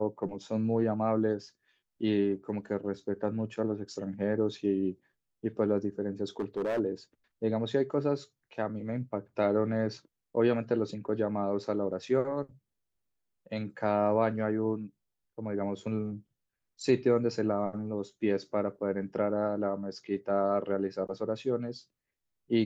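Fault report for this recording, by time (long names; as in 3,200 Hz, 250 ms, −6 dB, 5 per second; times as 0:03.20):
0:06.39–0:06.80: clipping −27 dBFS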